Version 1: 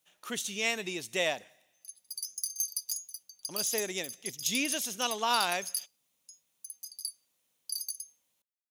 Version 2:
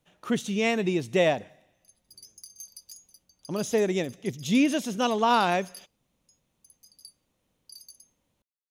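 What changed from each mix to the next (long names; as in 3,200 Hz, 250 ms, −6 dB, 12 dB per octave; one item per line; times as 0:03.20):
speech +6.5 dB
master: add spectral tilt −4 dB per octave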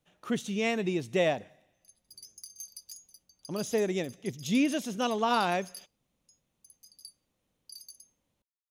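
speech −4.0 dB
master: add notch filter 950 Hz, Q 30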